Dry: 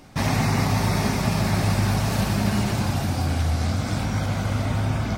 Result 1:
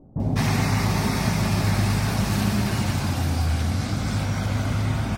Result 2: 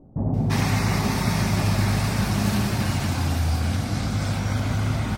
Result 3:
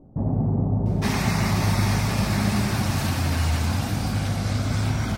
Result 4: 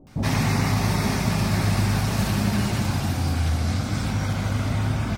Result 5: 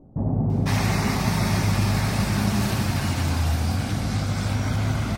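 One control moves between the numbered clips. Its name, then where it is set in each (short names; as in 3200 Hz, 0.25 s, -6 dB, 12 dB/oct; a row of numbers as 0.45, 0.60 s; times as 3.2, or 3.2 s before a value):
bands offset in time, time: 200, 340, 860, 70, 500 ms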